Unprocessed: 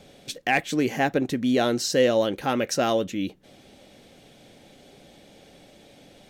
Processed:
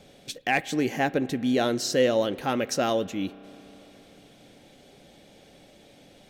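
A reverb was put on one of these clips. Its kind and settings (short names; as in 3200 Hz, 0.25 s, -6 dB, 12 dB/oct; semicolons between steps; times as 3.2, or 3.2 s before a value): spring tank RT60 3.8 s, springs 31 ms, chirp 30 ms, DRR 18 dB; gain -2 dB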